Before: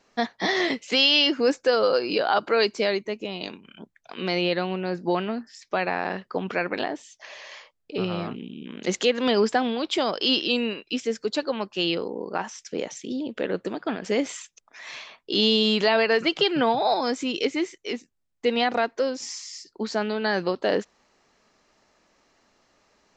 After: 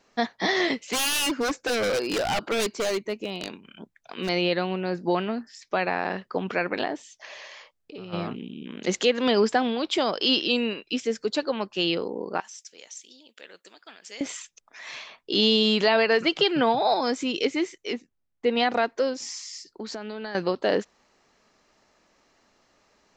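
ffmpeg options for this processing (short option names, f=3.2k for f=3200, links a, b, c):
-filter_complex "[0:a]asettb=1/sr,asplit=3[a][b][c];[a]atrim=end=0.774[d];[b]atrim=start=0.77:end=4.29,asetpts=PTS-STARTPTS,afade=t=in:d=0.004:c=qsin,afade=t=out:st=3.516:d=0.004:c=qsin,aeval=exprs='0.1*(abs(mod(val(0)/0.1+3,4)-2)-1)':c=same[e];[c]atrim=start=4.286[f];[d][e]acrossfade=d=0.004:c1=hsin:c2=qsin[g];[g][f]acrossfade=d=0.004:c1=qsin:c2=hsin,asplit=3[h][i][j];[h]afade=t=out:st=7.46:d=0.02[k];[i]acompressor=threshold=-40dB:ratio=3:attack=3.2:release=140:knee=1:detection=peak,afade=t=in:st=7.46:d=0.02,afade=t=out:st=8.12:d=0.02[l];[j]afade=t=in:st=8.12:d=0.02[m];[k][l][m]amix=inputs=3:normalize=0,asettb=1/sr,asplit=3[n][o][p];[n]atrim=end=12.404[q];[o]atrim=start=12.4:end=14.21,asetpts=PTS-STARTPTS,afade=t=in:d=0.004:c=qsin,afade=t=out:st=1.806:d=0.004:c=qsin,aderivative[r];[p]atrim=start=14.206[s];[q][r]acrossfade=d=0.004:c1=hsin:c2=qsin[t];[t][s]acrossfade=d=0.004:c1=qsin:c2=hsin,asettb=1/sr,asplit=3[u][v][w];[u]atrim=end=17.944[x];[v]atrim=start=17.94:end=18.57,asetpts=PTS-STARTPTS,afade=t=in:d=0.004:c=qsin,afade=t=out:st=0.626:d=0.004:c=qsin,aemphasis=mode=reproduction:type=75kf[y];[w]atrim=start=18.566[z];[x][y]acrossfade=d=0.004:c1=hsin:c2=qsin[aa];[aa][z]acrossfade=d=0.004:c1=qsin:c2=hsin,asettb=1/sr,asplit=3[ab][ac][ad];[ab]atrim=end=19.134[ae];[ac]atrim=start=19.13:end=20.35,asetpts=PTS-STARTPTS,afade=t=in:d=0.004:c=qsin,afade=t=out:st=1.216:d=0.004:c=qsin,acompressor=threshold=-31dB:ratio=6:attack=3.2:release=140:knee=1:detection=peak[af];[ad]atrim=start=20.346[ag];[ae][af]acrossfade=d=0.004:c1=hsin:c2=qsin[ah];[ah][ag]acrossfade=d=0.004:c1=qsin:c2=hsin"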